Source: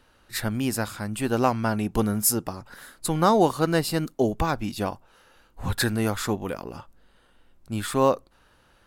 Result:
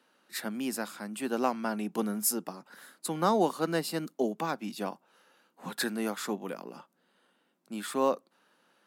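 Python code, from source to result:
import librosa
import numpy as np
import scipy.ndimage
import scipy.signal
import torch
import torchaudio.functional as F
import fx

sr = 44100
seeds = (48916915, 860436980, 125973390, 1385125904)

y = scipy.signal.sosfilt(scipy.signal.butter(8, 170.0, 'highpass', fs=sr, output='sos'), x)
y = y * librosa.db_to_amplitude(-6.5)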